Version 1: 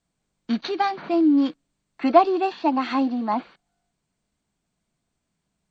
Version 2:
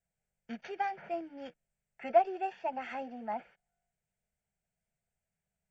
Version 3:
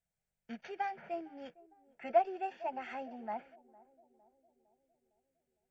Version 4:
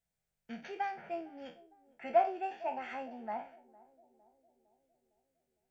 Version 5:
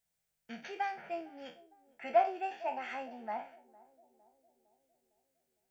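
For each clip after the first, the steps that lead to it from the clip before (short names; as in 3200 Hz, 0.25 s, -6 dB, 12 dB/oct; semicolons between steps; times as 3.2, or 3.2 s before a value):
fixed phaser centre 1100 Hz, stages 6; ending taper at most 570 dB/s; gain -8.5 dB
narrowing echo 0.457 s, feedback 62%, band-pass 390 Hz, level -20 dB; gain -3 dB
spectral trails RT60 0.34 s
tilt +1.5 dB/oct; gain +1 dB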